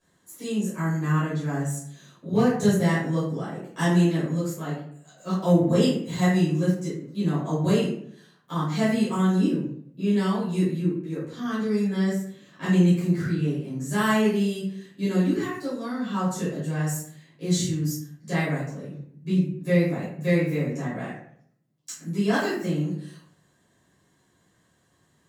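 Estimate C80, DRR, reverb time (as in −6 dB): 6.0 dB, −13.0 dB, 0.65 s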